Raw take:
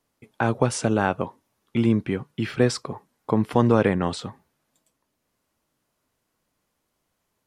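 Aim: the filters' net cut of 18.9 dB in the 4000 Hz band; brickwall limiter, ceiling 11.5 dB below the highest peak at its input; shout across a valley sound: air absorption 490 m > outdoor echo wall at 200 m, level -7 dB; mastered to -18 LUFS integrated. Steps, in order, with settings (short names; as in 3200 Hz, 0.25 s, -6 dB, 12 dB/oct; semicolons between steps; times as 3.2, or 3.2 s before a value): bell 4000 Hz -7.5 dB; limiter -16 dBFS; air absorption 490 m; outdoor echo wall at 200 m, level -7 dB; gain +13 dB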